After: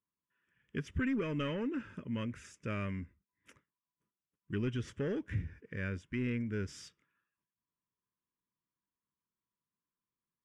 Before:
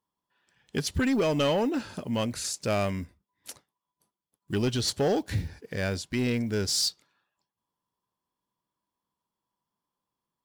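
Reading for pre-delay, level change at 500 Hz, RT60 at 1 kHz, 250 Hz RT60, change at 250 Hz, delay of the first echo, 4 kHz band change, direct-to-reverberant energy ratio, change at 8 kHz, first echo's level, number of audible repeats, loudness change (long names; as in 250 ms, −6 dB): no reverb audible, −12.5 dB, no reverb audible, no reverb audible, −7.5 dB, no echo audible, −19.5 dB, no reverb audible, −24.0 dB, no echo audible, no echo audible, −9.5 dB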